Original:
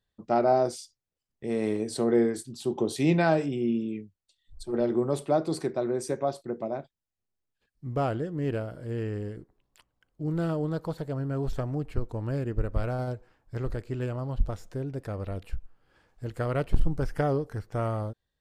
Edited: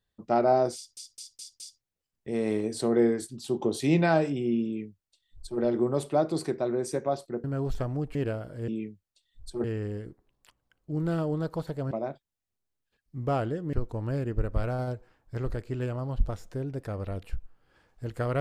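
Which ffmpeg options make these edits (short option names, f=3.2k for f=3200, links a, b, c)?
-filter_complex "[0:a]asplit=11[a][b][c][d][e][f][g][h][i][j][k];[a]atrim=end=0.972[l];[b]atrim=start=0.758:end=0.972[m];[c]atrim=start=0.758:end=0.972[n];[d]atrim=start=0.758:end=0.972[o];[e]atrim=start=0.758:end=6.602[p];[f]atrim=start=11.218:end=11.932[q];[g]atrim=start=8.418:end=8.952[r];[h]atrim=start=3.808:end=4.772[s];[i]atrim=start=8.948:end=11.222[t];[j]atrim=start=6.598:end=8.422[u];[k]atrim=start=11.928[v];[l][m]acrossfade=d=0.004:c1=hsin:c2=hsin[w];[w][n]acrossfade=d=0.004:c1=hsin:c2=hsin[x];[x][o]acrossfade=d=0.004:c1=hsin:c2=hsin[y];[y][p]acrossfade=d=0.004:c1=hsin:c2=hsin[z];[z][q]acrossfade=d=0.004:c1=hsin:c2=hsin[aa];[aa][r]acrossfade=d=0.004:c1=hsin:c2=hsin[ab];[ab][s]acrossfade=d=0.004:c1=hsin:c2=hsin[ac];[ac][t]acrossfade=d=0.004:c1=hsin:c2=hsin[ad];[ad][u]acrossfade=d=0.004:c1=hsin:c2=hsin[ae];[ae][v]acrossfade=d=0.004:c1=hsin:c2=hsin"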